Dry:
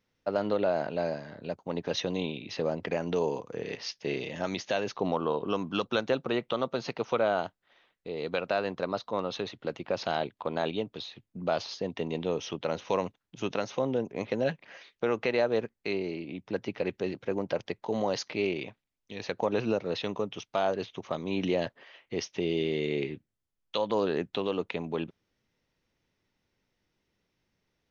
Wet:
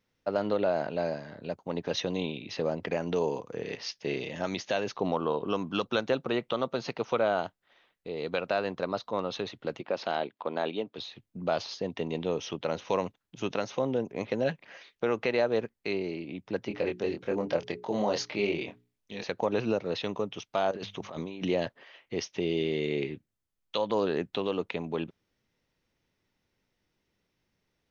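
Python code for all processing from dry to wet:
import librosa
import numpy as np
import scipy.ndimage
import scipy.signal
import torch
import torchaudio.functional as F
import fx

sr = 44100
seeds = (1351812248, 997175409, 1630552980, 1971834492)

y = fx.chain(x, sr, fx.highpass(hz=220.0, slope=12),
    fx.air_absorb(metres=86.0), at=(9.81, 10.98))
y = fx.chain(y, sr, fx.hum_notches(base_hz=60, count=8),
    fx.doubler(ms=24.0, db=-4), at=(16.68, 19.24))
y = fx.chain(y, sr, fx.hum_notches(base_hz=50, count=4),
    fx.over_compress(threshold_db=-38.0, ratio=-1.0), at=(20.71, 21.43))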